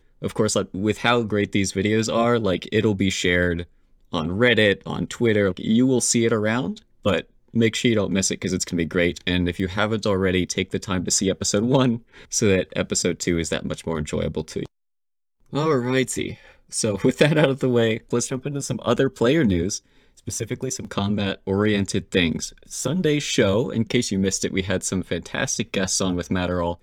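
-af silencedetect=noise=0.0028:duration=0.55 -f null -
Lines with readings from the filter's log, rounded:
silence_start: 14.66
silence_end: 15.42 | silence_duration: 0.76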